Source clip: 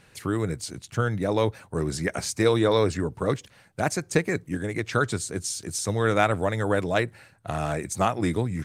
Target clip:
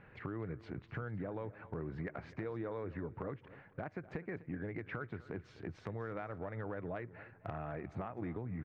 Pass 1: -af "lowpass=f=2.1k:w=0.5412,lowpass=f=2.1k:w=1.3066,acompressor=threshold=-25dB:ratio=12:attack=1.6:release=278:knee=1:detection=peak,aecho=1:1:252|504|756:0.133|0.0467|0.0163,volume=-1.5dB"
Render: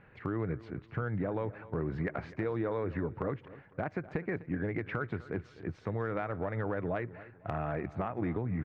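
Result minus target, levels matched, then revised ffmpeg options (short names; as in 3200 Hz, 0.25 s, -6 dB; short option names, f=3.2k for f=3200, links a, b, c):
compressor: peak gain reduction -8 dB
-af "lowpass=f=2.1k:w=0.5412,lowpass=f=2.1k:w=1.3066,acompressor=threshold=-33.5dB:ratio=12:attack=1.6:release=278:knee=1:detection=peak,aecho=1:1:252|504|756:0.133|0.0467|0.0163,volume=-1.5dB"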